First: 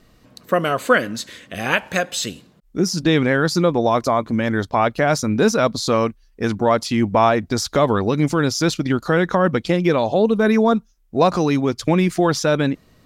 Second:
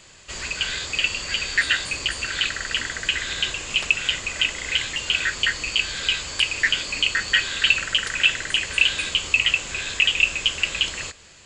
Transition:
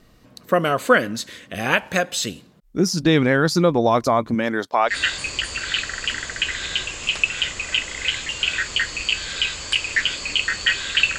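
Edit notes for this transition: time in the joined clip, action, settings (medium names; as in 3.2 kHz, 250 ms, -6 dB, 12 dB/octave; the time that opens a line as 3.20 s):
first
4.34–4.97 s: high-pass 180 Hz -> 720 Hz
4.92 s: go over to second from 1.59 s, crossfade 0.10 s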